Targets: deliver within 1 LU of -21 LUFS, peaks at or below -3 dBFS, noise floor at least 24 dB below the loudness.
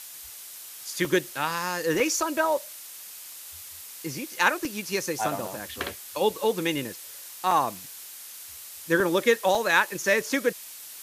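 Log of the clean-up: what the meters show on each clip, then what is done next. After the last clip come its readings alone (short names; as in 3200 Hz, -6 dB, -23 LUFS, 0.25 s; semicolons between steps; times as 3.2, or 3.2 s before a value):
dropouts 7; longest dropout 2.1 ms; noise floor -43 dBFS; noise floor target -50 dBFS; loudness -26.0 LUFS; peak -6.5 dBFS; loudness target -21.0 LUFS
-> interpolate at 1.05/2/4.65/5.48/7.51/9/9.55, 2.1 ms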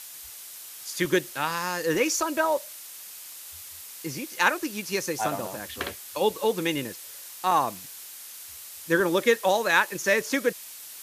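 dropouts 0; noise floor -43 dBFS; noise floor target -50 dBFS
-> noise print and reduce 7 dB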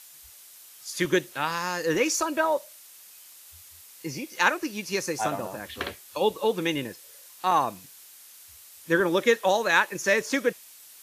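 noise floor -50 dBFS; loudness -26.0 LUFS; peak -6.5 dBFS; loudness target -21.0 LUFS
-> gain +5 dB; limiter -3 dBFS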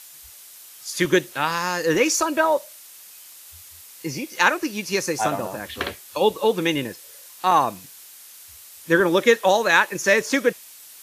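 loudness -21.0 LUFS; peak -3.0 dBFS; noise floor -45 dBFS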